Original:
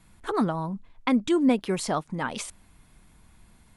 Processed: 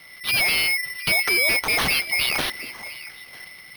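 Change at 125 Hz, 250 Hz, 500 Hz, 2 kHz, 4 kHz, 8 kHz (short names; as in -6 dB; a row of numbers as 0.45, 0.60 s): -4.0, -14.0, -4.0, +18.5, +17.5, +11.0 dB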